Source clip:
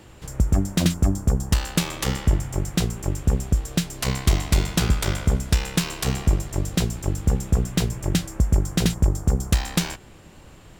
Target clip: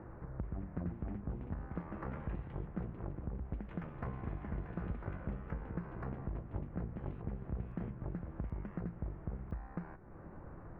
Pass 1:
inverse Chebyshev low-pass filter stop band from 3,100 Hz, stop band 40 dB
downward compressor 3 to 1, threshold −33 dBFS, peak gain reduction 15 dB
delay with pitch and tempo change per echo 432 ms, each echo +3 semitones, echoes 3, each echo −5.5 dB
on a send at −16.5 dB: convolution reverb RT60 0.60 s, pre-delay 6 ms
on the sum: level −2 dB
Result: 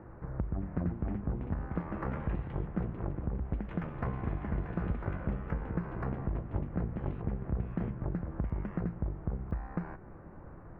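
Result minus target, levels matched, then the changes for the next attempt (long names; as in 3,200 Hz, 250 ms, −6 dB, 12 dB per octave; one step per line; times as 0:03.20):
downward compressor: peak gain reduction −6.5 dB
change: downward compressor 3 to 1, threshold −43 dBFS, peak gain reduction 21.5 dB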